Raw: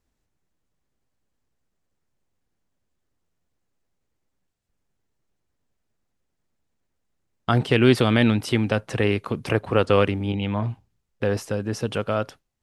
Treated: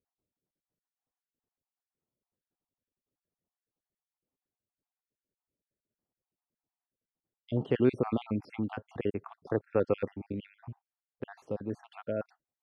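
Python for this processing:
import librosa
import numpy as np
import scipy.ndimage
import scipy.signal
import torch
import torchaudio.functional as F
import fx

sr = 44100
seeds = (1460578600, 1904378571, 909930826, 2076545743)

y = fx.spec_dropout(x, sr, seeds[0], share_pct=55)
y = fx.bandpass_q(y, sr, hz=370.0, q=0.57)
y = y * librosa.db_to_amplitude(-6.0)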